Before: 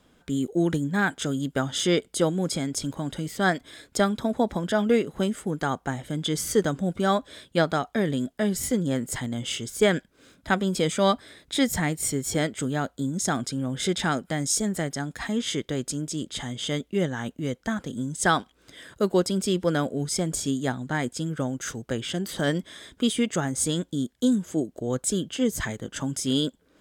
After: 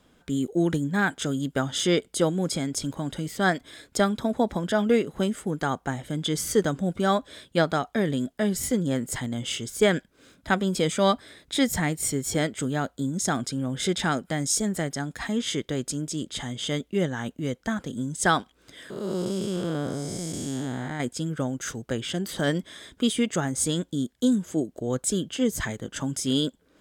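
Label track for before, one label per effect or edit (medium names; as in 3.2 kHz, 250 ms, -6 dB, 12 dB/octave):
18.900000	21.000000	spectral blur width 313 ms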